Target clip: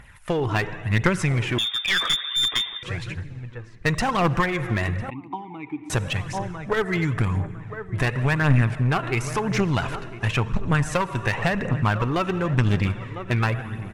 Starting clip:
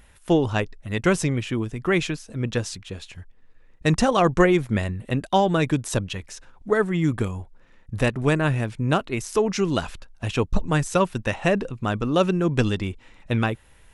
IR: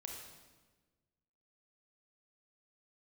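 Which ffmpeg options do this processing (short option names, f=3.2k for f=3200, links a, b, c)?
-filter_complex "[0:a]asplit=2[a][b];[b]adelay=1001,lowpass=f=1.7k:p=1,volume=-17dB,asplit=2[c][d];[d]adelay=1001,lowpass=f=1.7k:p=1,volume=0.33,asplit=2[e][f];[f]adelay=1001,lowpass=f=1.7k:p=1,volume=0.33[g];[a][c][e][g]amix=inputs=4:normalize=0,asplit=2[h][i];[1:a]atrim=start_sample=2205,asetrate=29988,aresample=44100[j];[i][j]afir=irnorm=-1:irlink=0,volume=-10.5dB[k];[h][k]amix=inputs=2:normalize=0,acompressor=threshold=-19dB:ratio=6,equalizer=f=125:t=o:w=1:g=10,equalizer=f=1k:t=o:w=1:g=8,equalizer=f=2k:t=o:w=1:g=10,aphaser=in_gain=1:out_gain=1:delay=3.1:decay=0.45:speed=0.94:type=triangular,asettb=1/sr,asplit=3[l][m][n];[l]atrim=end=1.584[o];[m]atrim=start=1.58:end=2.83,asetpts=PTS-STARTPTS,afade=t=in:d=0.004:c=qsin,afade=t=out:st=1.246:d=0.004:c=qsin,lowpass=f=3.1k:t=q:w=0.5098,lowpass=f=3.1k:t=q:w=0.6013,lowpass=f=3.1k:t=q:w=0.9,lowpass=f=3.1k:t=q:w=2.563,afreqshift=-3700[p];[n]atrim=start=2.826[q];[o][p]acrossfade=d=0.004:c1=hsin:c2=qsin[r];[r][q]acrossfade=d=0.004:c1=qsin:c2=hsin,asettb=1/sr,asplit=3[s][t][u];[s]atrim=end=5.104[v];[t]atrim=start=5.1:end=5.9,asetpts=PTS-STARTPTS,afade=t=in:d=0.004:c=qsin,afade=t=out:st=0.796:d=0.004:c=qsin,asplit=3[w][x][y];[w]bandpass=f=300:t=q:w=8,volume=0dB[z];[x]bandpass=f=870:t=q:w=8,volume=-6dB[aa];[y]bandpass=f=2.24k:t=q:w=8,volume=-9dB[ab];[z][aa][ab]amix=inputs=3:normalize=0[ac];[u]atrim=start=5.896[ad];[v][ac]acrossfade=d=0.004:c1=hsin:c2=qsin[ae];[ae][ad]acrossfade=d=0.004:c1=qsin:c2=hsin,aeval=exprs='clip(val(0),-1,0.141)':c=same,volume=-4dB"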